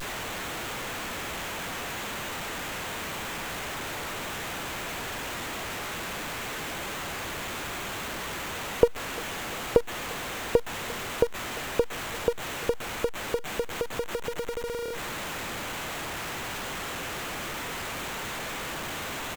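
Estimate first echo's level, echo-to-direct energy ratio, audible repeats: −21.5 dB, −20.5 dB, 2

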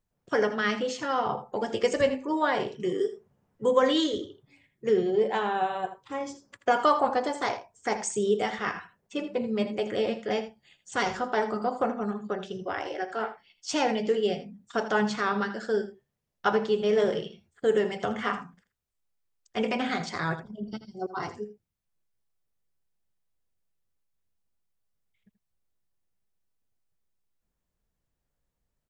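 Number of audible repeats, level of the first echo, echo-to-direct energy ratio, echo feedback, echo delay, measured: 1, −13.0 dB, −13.0 dB, repeats not evenly spaced, 81 ms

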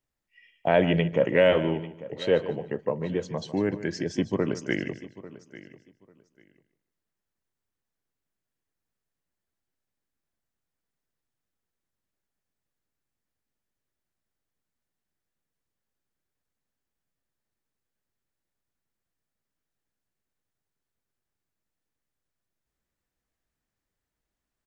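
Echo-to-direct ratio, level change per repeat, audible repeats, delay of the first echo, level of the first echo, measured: −12.0 dB, repeats not evenly spaced, 5, 149 ms, −14.0 dB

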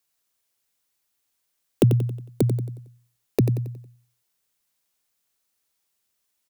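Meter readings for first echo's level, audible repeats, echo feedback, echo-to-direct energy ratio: −9.0 dB, 4, 41%, −8.0 dB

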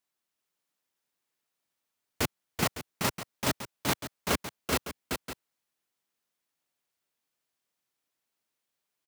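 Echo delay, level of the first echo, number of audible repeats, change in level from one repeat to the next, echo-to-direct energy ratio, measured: 384 ms, −4.5 dB, 2, repeats not evenly spaced, −3.5 dB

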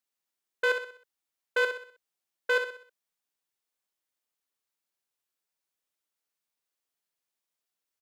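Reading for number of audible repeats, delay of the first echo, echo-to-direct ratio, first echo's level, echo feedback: 4, 63 ms, −6.5 dB, −7.5 dB, 42%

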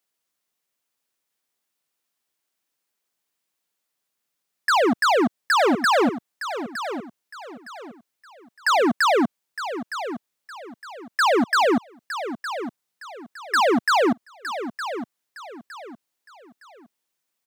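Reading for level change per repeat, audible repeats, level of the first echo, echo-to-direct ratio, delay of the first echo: −10.0 dB, 3, −11.0 dB, −10.5 dB, 912 ms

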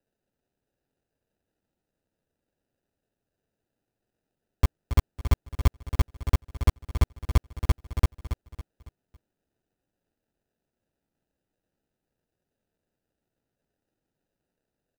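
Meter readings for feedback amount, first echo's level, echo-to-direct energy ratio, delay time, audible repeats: 39%, −10.0 dB, −9.5 dB, 277 ms, 4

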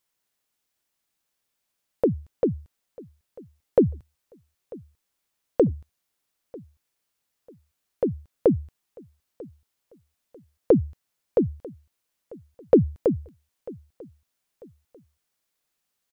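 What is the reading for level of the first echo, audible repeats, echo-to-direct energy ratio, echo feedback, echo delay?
−22.0 dB, 2, −21.5 dB, 33%, 944 ms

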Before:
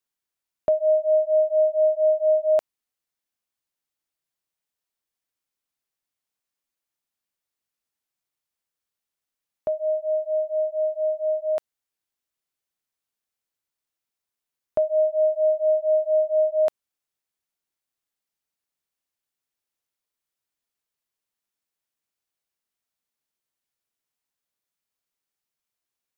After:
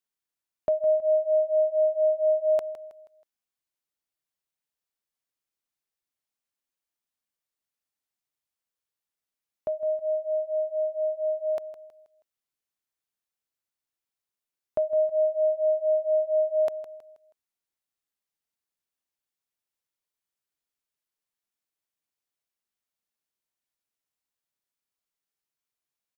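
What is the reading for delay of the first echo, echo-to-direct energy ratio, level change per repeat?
160 ms, −13.0 dB, −8.0 dB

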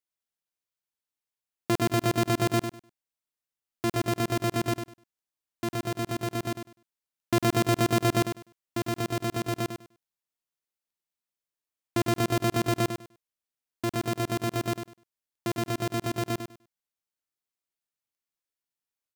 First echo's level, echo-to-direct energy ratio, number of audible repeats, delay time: −8.0 dB, −8.0 dB, 2, 100 ms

